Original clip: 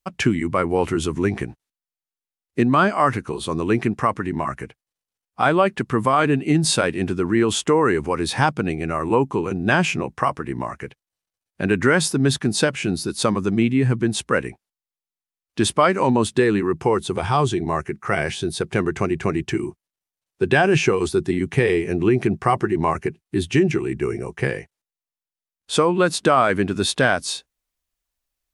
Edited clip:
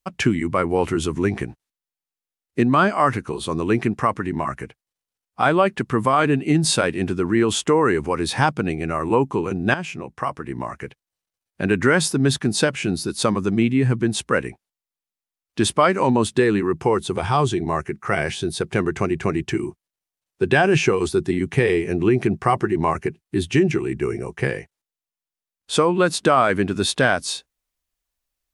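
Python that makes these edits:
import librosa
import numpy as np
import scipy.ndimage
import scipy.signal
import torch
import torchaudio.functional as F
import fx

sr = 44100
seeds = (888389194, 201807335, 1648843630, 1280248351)

y = fx.edit(x, sr, fx.fade_in_from(start_s=9.74, length_s=1.1, floor_db=-12.5), tone=tone)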